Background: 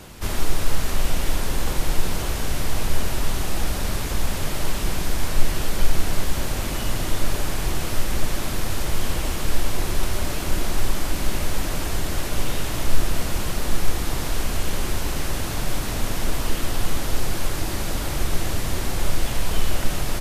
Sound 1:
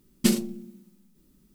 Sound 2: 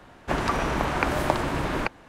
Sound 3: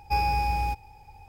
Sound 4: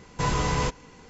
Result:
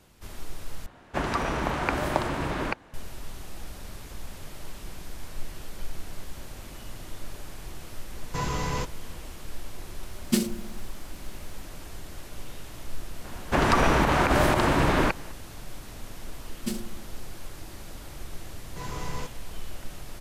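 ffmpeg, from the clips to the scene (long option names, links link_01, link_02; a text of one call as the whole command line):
ffmpeg -i bed.wav -i cue0.wav -i cue1.wav -i cue2.wav -i cue3.wav -filter_complex "[2:a]asplit=2[link_01][link_02];[4:a]asplit=2[link_03][link_04];[1:a]asplit=2[link_05][link_06];[0:a]volume=-16dB[link_07];[link_02]alimiter=level_in=14.5dB:limit=-1dB:release=50:level=0:latency=1[link_08];[link_04]dynaudnorm=framelen=160:gausssize=3:maxgain=8dB[link_09];[link_07]asplit=2[link_10][link_11];[link_10]atrim=end=0.864[link_12];[link_01]atrim=end=2.08,asetpts=PTS-STARTPTS,volume=-2.5dB[link_13];[link_11]atrim=start=2.936[link_14];[link_03]atrim=end=1.09,asetpts=PTS-STARTPTS,volume=-4.5dB,afade=type=in:duration=0.004:curve=hsin,afade=type=out:start_time=1.086:duration=0.004:curve=hsin,adelay=8150[link_15];[link_05]atrim=end=1.54,asetpts=PTS-STARTPTS,volume=-2.5dB,afade=type=in:duration=0.004:curve=hsin,afade=type=out:start_time=1.536:duration=0.004:curve=hsin,adelay=10080[link_16];[link_08]atrim=end=2.08,asetpts=PTS-STARTPTS,volume=-9.5dB,afade=type=in:duration=0.004:curve=hsin,afade=type=out:start_time=2.076:duration=0.004:curve=hsin,adelay=13240[link_17];[link_06]atrim=end=1.54,asetpts=PTS-STARTPTS,volume=-10.5dB,afade=type=in:duration=0.004:curve=hsin,afade=type=out:start_time=1.536:duration=0.004:curve=hsin,adelay=16420[link_18];[link_09]atrim=end=1.09,asetpts=PTS-STARTPTS,volume=-18dB,afade=type=in:duration=0.004:curve=hsin,afade=type=out:start_time=1.086:duration=0.004:curve=hsin,adelay=18570[link_19];[link_12][link_13]acrossfade=duration=0.004:curve1=hsin:curve2=hsin[link_20];[link_20][link_14]acrossfade=duration=0.004:curve1=hsin:curve2=hsin[link_21];[link_21][link_15][link_16][link_17][link_18][link_19]amix=inputs=6:normalize=0" out.wav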